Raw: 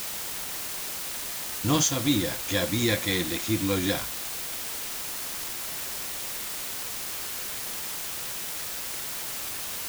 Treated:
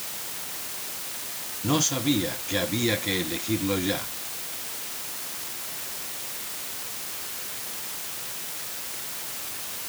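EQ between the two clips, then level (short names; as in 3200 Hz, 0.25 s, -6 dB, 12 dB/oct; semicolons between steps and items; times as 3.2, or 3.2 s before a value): HPF 84 Hz; 0.0 dB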